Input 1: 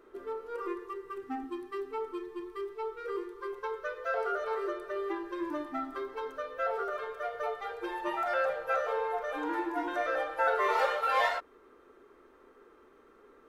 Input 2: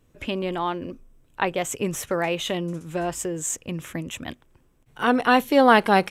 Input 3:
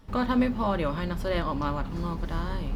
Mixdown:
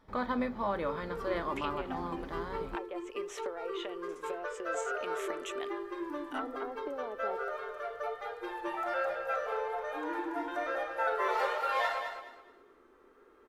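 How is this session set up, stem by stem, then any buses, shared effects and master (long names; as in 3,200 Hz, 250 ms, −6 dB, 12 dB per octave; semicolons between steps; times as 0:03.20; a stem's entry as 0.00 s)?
−3.5 dB, 0.60 s, no send, echo send −7.5 dB, pitch vibrato 1.2 Hz 33 cents
−4.0 dB, 1.35 s, no send, no echo send, high-pass filter 360 Hz 24 dB per octave; treble cut that deepens with the level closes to 470 Hz, closed at −18.5 dBFS; downward compressor, threshold −35 dBFS, peak gain reduction 15 dB
−4.0 dB, 0.00 s, no send, no echo send, bass and treble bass −12 dB, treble −10 dB; notch filter 2,800 Hz, Q 5.1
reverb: not used
echo: repeating echo 211 ms, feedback 27%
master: no processing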